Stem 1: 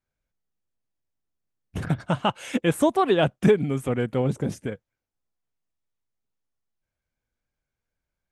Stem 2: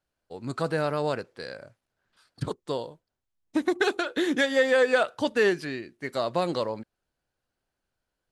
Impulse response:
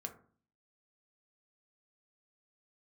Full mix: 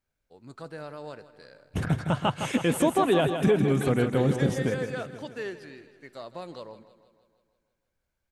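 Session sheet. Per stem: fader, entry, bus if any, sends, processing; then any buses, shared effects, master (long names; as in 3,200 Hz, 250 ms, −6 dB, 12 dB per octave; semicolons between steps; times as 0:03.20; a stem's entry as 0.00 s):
+1.5 dB, 0.00 s, no send, echo send −8 dB, brickwall limiter −15.5 dBFS, peak gain reduction 8 dB
−13.0 dB, 0.00 s, no send, echo send −15.5 dB, no processing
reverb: not used
echo: repeating echo 160 ms, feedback 58%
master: no processing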